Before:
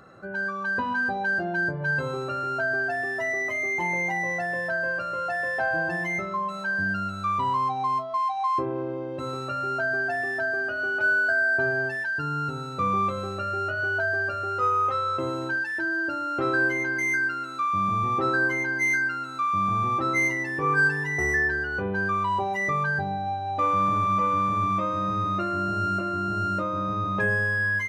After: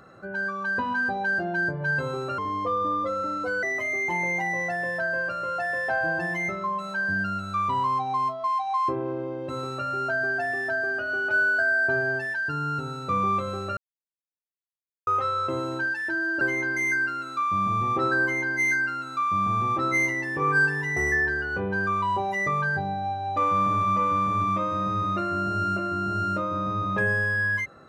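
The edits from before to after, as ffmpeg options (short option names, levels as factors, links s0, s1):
-filter_complex "[0:a]asplit=6[s0][s1][s2][s3][s4][s5];[s0]atrim=end=2.384[s6];[s1]atrim=start=2.38:end=3.33,asetpts=PTS-STARTPTS,asetrate=33516,aresample=44100[s7];[s2]atrim=start=3.326:end=13.47,asetpts=PTS-STARTPTS,afade=t=out:st=10.14:d=0.004:c=hsin[s8];[s3]atrim=start=13.47:end=14.77,asetpts=PTS-STARTPTS,volume=0[s9];[s4]atrim=start=14.77:end=16.112,asetpts=PTS-STARTPTS,afade=t=in:d=0.004:c=hsin[s10];[s5]atrim=start=16.628[s11];[s6][s7]acrossfade=d=0.004:c1=hsin:c2=hsin[s12];[s8][s9][s10]concat=n=3:v=0:a=1[s13];[s12][s13]acrossfade=d=0.004:c1=hsin:c2=hsin[s14];[s14][s11]acrossfade=d=0.004:c1=hsin:c2=hsin"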